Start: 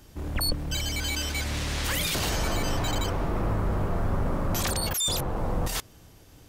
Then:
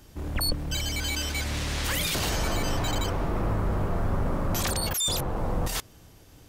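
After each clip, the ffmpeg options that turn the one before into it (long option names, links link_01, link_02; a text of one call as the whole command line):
ffmpeg -i in.wav -af anull out.wav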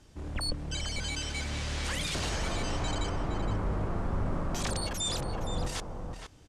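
ffmpeg -i in.wav -filter_complex "[0:a]lowpass=frequency=9300:width=0.5412,lowpass=frequency=9300:width=1.3066,asplit=2[link_01][link_02];[link_02]adelay=466.5,volume=-6dB,highshelf=frequency=4000:gain=-10.5[link_03];[link_01][link_03]amix=inputs=2:normalize=0,volume=-5.5dB" out.wav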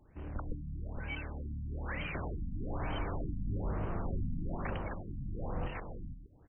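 ffmpeg -i in.wav -af "highshelf=frequency=3400:gain=8,afftfilt=real='re*lt(b*sr/1024,270*pow(3200/270,0.5+0.5*sin(2*PI*1.1*pts/sr)))':imag='im*lt(b*sr/1024,270*pow(3200/270,0.5+0.5*sin(2*PI*1.1*pts/sr)))':win_size=1024:overlap=0.75,volume=-4dB" out.wav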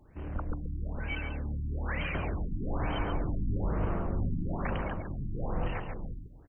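ffmpeg -i in.wav -af "aecho=1:1:139:0.422,volume=4dB" out.wav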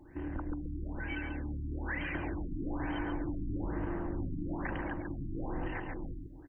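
ffmpeg -i in.wav -af "superequalizer=6b=3.55:9b=1.58:11b=2.51,acompressor=threshold=-38dB:ratio=2" out.wav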